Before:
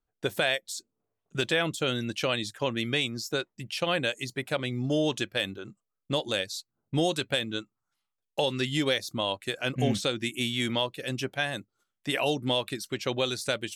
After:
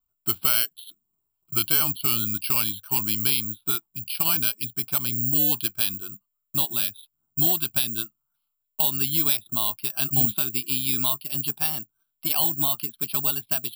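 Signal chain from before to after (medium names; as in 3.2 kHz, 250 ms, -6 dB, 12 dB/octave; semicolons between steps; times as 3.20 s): gliding tape speed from 87% -> 113%; careless resampling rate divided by 6×, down filtered, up zero stuff; static phaser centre 1.9 kHz, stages 6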